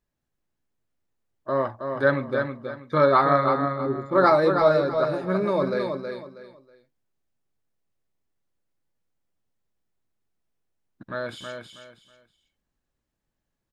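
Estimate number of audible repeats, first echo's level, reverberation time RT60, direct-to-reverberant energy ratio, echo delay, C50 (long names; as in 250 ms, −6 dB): 3, −6.0 dB, no reverb audible, no reverb audible, 321 ms, no reverb audible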